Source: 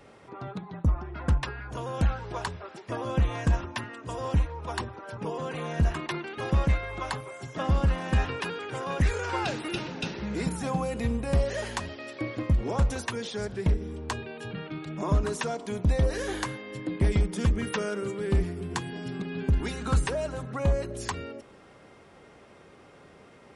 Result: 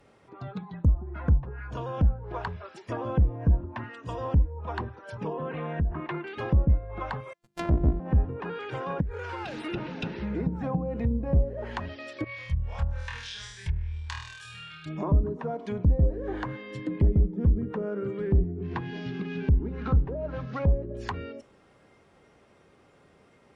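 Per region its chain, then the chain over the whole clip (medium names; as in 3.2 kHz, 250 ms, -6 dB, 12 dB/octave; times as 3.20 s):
5.33–6.27 s: low-pass 2.7 kHz + compression 3:1, threshold -26 dBFS
7.33–8.00 s: sorted samples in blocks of 128 samples + gate -35 dBFS, range -35 dB + hum notches 50/100/150/200/250/300/350/400 Hz
9.01–9.66 s: peaking EQ 9.6 kHz +12.5 dB 0.21 oct + compression 8:1, threshold -31 dBFS + short-mantissa float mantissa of 2-bit
12.24–14.86 s: amplifier tone stack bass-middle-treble 10-0-10 + flutter echo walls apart 4.3 m, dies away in 0.83 s
18.64–20.90 s: CVSD coder 32 kbps + peaking EQ 2.6 kHz +3 dB 1.3 oct
whole clip: spectral noise reduction 7 dB; low-pass that closes with the level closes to 470 Hz, closed at -24.5 dBFS; bass shelf 170 Hz +3 dB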